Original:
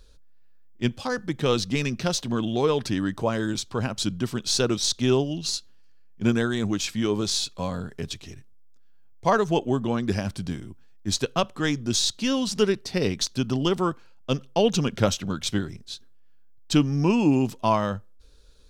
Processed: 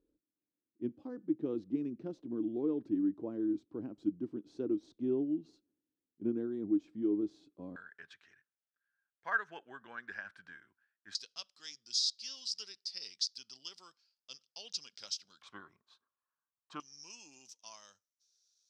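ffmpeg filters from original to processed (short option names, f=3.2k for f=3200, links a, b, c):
-af "asetnsamples=n=441:p=0,asendcmd='7.76 bandpass f 1600;11.15 bandpass f 5000;15.42 bandpass f 1100;16.8 bandpass f 5800',bandpass=f=310:t=q:w=7.8:csg=0"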